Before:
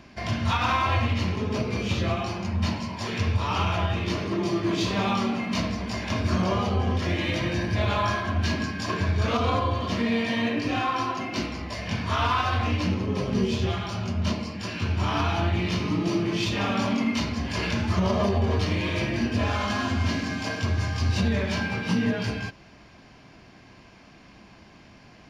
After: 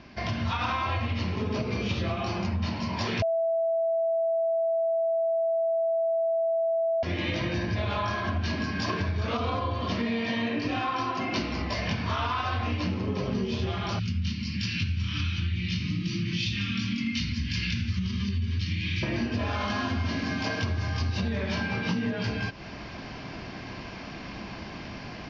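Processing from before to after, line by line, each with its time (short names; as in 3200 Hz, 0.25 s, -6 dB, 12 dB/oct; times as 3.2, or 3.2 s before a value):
3.22–7.03 bleep 660 Hz -15.5 dBFS
13.99–19.03 Chebyshev band-stop 170–2500 Hz
whole clip: AGC; steep low-pass 5900 Hz 48 dB/oct; compressor 6:1, threshold -27 dBFS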